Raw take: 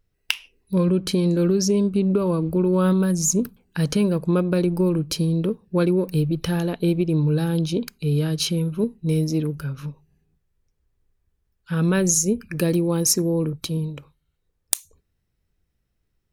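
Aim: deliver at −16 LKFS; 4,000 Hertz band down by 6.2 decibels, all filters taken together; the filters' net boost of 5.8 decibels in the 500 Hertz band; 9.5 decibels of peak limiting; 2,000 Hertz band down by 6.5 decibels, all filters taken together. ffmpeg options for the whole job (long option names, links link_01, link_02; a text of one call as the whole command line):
ffmpeg -i in.wav -af "equalizer=frequency=500:width_type=o:gain=8,equalizer=frequency=2000:width_type=o:gain=-8,equalizer=frequency=4000:width_type=o:gain=-6.5,volume=5dB,alimiter=limit=-6.5dB:level=0:latency=1" out.wav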